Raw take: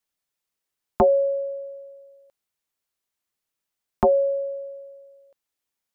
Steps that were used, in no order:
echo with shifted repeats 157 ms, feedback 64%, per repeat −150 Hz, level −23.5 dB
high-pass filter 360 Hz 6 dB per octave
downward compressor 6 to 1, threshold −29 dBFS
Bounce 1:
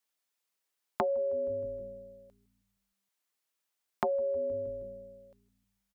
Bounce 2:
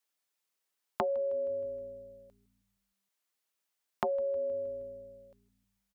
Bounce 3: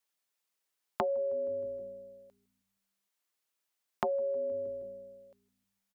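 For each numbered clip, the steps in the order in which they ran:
high-pass filter, then echo with shifted repeats, then downward compressor
downward compressor, then high-pass filter, then echo with shifted repeats
echo with shifted repeats, then downward compressor, then high-pass filter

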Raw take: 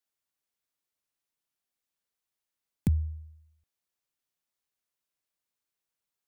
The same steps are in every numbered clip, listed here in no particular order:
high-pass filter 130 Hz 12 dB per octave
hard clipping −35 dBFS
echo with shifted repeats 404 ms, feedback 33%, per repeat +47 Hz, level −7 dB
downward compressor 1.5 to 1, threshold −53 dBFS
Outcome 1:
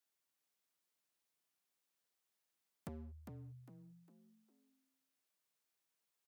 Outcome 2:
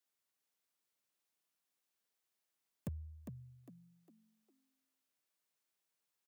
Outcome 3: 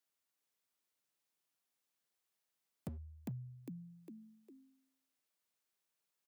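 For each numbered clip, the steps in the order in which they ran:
hard clipping, then downward compressor, then echo with shifted repeats, then high-pass filter
high-pass filter, then downward compressor, then hard clipping, then echo with shifted repeats
echo with shifted repeats, then downward compressor, then hard clipping, then high-pass filter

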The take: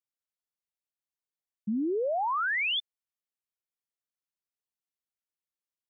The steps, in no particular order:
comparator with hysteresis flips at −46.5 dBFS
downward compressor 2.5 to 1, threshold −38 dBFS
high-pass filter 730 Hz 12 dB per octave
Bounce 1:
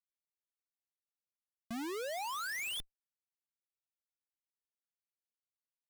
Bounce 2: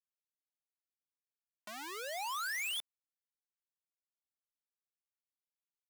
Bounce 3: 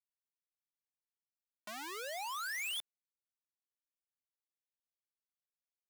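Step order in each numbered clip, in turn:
high-pass filter, then comparator with hysteresis, then downward compressor
comparator with hysteresis, then downward compressor, then high-pass filter
comparator with hysteresis, then high-pass filter, then downward compressor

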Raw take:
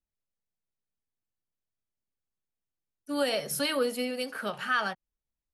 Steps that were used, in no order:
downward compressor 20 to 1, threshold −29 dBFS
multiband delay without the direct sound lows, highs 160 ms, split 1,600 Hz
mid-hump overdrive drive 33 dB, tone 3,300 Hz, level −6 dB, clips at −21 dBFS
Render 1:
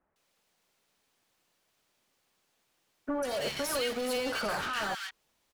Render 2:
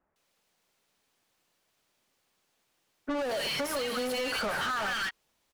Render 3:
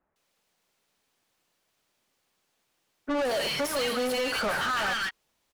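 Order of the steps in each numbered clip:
mid-hump overdrive, then downward compressor, then multiband delay without the direct sound
multiband delay without the direct sound, then mid-hump overdrive, then downward compressor
downward compressor, then multiband delay without the direct sound, then mid-hump overdrive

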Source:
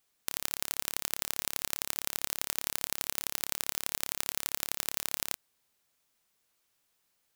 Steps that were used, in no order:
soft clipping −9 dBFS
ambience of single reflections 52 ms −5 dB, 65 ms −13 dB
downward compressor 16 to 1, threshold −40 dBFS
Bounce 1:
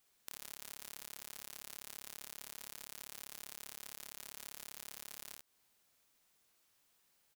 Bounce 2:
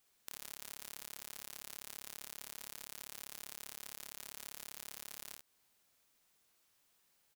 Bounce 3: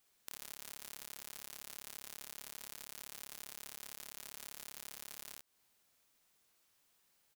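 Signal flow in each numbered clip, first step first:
soft clipping, then ambience of single reflections, then downward compressor
soft clipping, then downward compressor, then ambience of single reflections
ambience of single reflections, then soft clipping, then downward compressor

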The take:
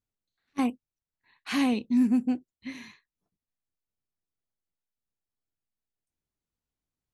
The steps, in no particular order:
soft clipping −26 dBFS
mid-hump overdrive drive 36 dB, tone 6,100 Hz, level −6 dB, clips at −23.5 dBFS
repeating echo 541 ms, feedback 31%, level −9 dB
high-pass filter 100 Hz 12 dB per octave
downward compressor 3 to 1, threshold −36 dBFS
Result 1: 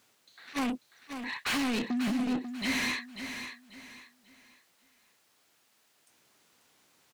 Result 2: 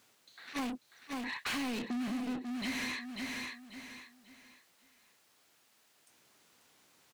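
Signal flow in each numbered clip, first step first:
high-pass filter, then soft clipping, then downward compressor, then mid-hump overdrive, then repeating echo
high-pass filter, then mid-hump overdrive, then repeating echo, then downward compressor, then soft clipping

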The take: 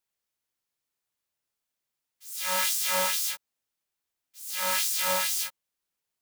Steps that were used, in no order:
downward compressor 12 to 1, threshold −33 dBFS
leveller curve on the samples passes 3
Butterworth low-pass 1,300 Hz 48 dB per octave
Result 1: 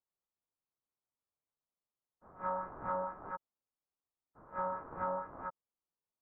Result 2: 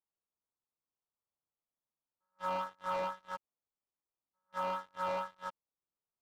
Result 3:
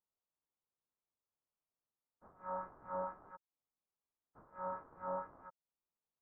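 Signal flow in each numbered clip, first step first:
leveller curve on the samples, then Butterworth low-pass, then downward compressor
Butterworth low-pass, then leveller curve on the samples, then downward compressor
leveller curve on the samples, then downward compressor, then Butterworth low-pass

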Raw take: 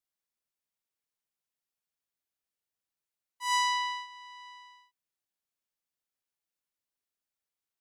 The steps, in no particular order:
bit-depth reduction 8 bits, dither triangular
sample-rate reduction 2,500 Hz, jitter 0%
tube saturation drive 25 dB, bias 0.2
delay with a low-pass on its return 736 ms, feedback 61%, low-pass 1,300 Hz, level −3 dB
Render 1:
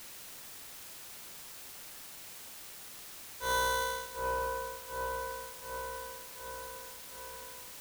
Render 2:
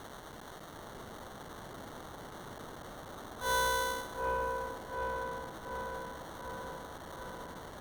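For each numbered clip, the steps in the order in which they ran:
sample-rate reduction, then delay with a low-pass on its return, then tube saturation, then bit-depth reduction
bit-depth reduction, then sample-rate reduction, then delay with a low-pass on its return, then tube saturation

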